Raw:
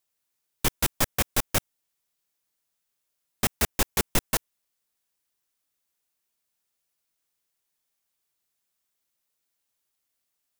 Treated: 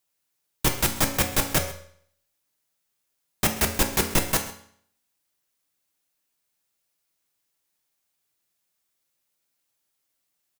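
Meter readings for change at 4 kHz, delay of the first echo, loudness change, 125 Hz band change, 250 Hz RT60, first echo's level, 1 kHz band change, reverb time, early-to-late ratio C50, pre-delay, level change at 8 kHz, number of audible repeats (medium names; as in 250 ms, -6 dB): +2.5 dB, 132 ms, +2.5 dB, +3.5 dB, 0.60 s, -18.5 dB, +3.0 dB, 0.60 s, 9.0 dB, 3 ms, +2.5 dB, 1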